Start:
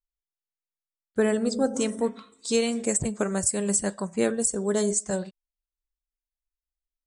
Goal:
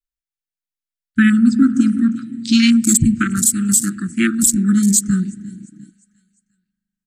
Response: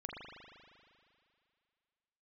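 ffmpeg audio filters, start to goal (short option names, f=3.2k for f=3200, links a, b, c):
-filter_complex "[0:a]asettb=1/sr,asplit=3[a][b][c];[a]atrim=end=1.554[d];[b]atrim=start=1.55:end=2.63,asetpts=PTS-STARTPTS,afade=t=in:d=0.004:c=qsin,afade=t=out:st=1.076:d=0.004:c=qsin,highshelf=f=3.1k:g=-4.5[e];[c]atrim=start=2.626[f];[d][e]acrossfade=d=0.004:c1=hsin:c2=qsin[g];[g][f]acrossfade=d=0.004:c1=qsin:c2=hsin,asettb=1/sr,asplit=3[h][i][j];[h]atrim=end=3.154[k];[i]atrim=start=3.15:end=4.43,asetpts=PTS-STARTPTS,afade=t=in:d=0.004:c=qsin,afade=t=out:st=1.276:d=0.004:c=qsin,highpass=260[l];[j]atrim=start=4.426[m];[k][l]acrossfade=d=0.004:c1=hsin:c2=qsin[n];[n][m]acrossfade=d=0.004:c1=qsin:c2=hsin,aecho=1:1:351|702|1053|1404:0.126|0.0617|0.0302|0.0148,asplit=2[o][p];[1:a]atrim=start_sample=2205[q];[p][q]afir=irnorm=-1:irlink=0,volume=-11dB[r];[o][r]amix=inputs=2:normalize=0,afwtdn=0.0178,asuperstop=centerf=650:order=20:qfactor=0.68,alimiter=level_in=15.5dB:limit=-1dB:release=50:level=0:latency=1,volume=-1dB"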